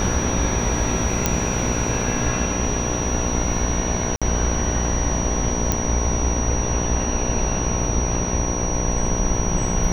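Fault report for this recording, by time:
mains buzz 60 Hz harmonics 18 −26 dBFS
whistle 5,800 Hz −27 dBFS
0:01.26: click −2 dBFS
0:04.16–0:04.22: drop-out 56 ms
0:05.72: click −4 dBFS

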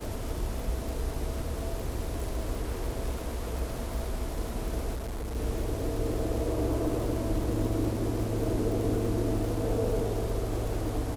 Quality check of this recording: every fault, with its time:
surface crackle 100 per second −35 dBFS
0:04.95–0:05.37: clipping −31.5 dBFS

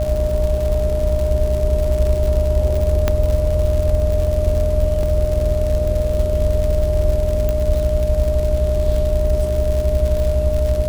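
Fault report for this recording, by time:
mains buzz 60 Hz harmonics 11 −22 dBFS
surface crackle 130 per second −22 dBFS
whistle 610 Hz −20 dBFS
0:03.08: click −3 dBFS
0:05.03: drop-out 2.1 ms
0:07.49: click

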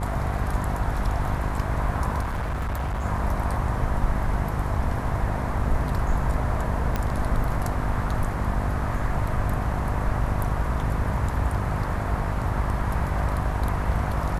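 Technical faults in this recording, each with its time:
mains buzz 50 Hz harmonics 19 −29 dBFS
0:02.22–0:03.05: clipping −24 dBFS
0:06.96: click −12 dBFS

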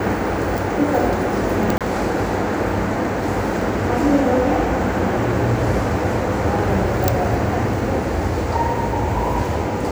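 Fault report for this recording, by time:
0:01.78–0:01.81: drop-out 27 ms

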